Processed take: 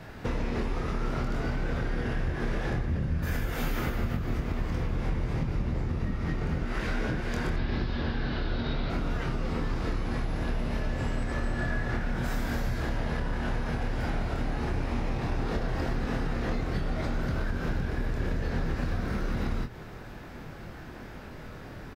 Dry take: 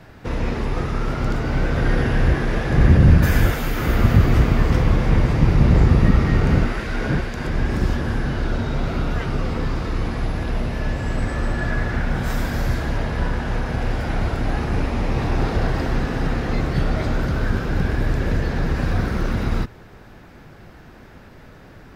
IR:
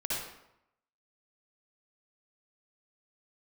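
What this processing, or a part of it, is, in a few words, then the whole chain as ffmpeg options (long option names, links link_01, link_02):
serial compression, peaks first: -filter_complex "[0:a]asettb=1/sr,asplit=3[link_01][link_02][link_03];[link_01]atrim=end=7.564[link_04];[link_02]atrim=start=7.56:end=8.9,asetpts=PTS-STARTPTS,afade=type=in:duration=0.004:curve=qsin,afade=type=out:start_time=1.336:duration=0.004:curve=qsin,highshelf=frequency=5900:width_type=q:width=3:gain=-13.5[link_05];[link_03]atrim=start=8.896[link_06];[link_04][link_05]acrossfade=duration=0.004:curve1=hsin:curve2=qsin[link_07];[link_07][link_06]acrossfade=duration=0.004:curve1=qsin:curve2=hsin,acompressor=threshold=-22dB:ratio=6,acompressor=threshold=-28dB:ratio=3,asplit=2[link_08][link_09];[link_09]adelay=25,volume=-6dB[link_10];[link_08][link_10]amix=inputs=2:normalize=0"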